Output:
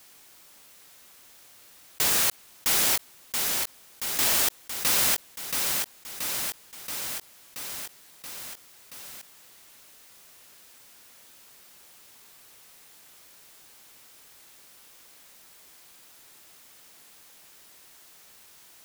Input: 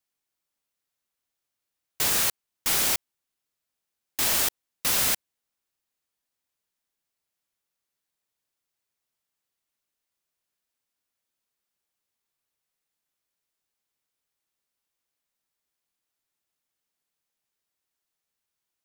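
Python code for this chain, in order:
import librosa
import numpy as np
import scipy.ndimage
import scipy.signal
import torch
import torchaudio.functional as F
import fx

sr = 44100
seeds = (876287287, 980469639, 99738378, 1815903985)

y = fx.low_shelf(x, sr, hz=130.0, db=-4.5)
y = fx.echo_feedback(y, sr, ms=678, feedback_pct=49, wet_db=-9)
y = fx.env_flatten(y, sr, amount_pct=50)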